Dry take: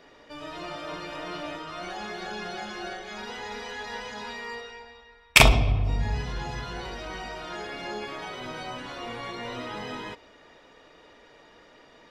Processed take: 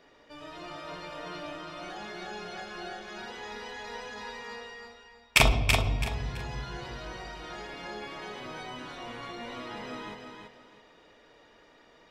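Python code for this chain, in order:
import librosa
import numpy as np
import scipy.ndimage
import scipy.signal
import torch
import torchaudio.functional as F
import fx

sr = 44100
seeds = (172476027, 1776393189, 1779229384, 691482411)

y = fx.echo_feedback(x, sr, ms=331, feedback_pct=26, wet_db=-5)
y = y * 10.0 ** (-5.5 / 20.0)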